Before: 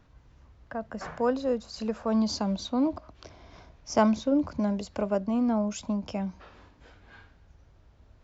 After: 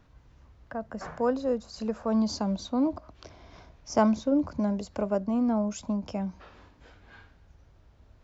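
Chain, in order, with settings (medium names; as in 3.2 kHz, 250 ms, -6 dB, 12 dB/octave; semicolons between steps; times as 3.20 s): dynamic bell 3 kHz, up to -5 dB, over -52 dBFS, Q 0.86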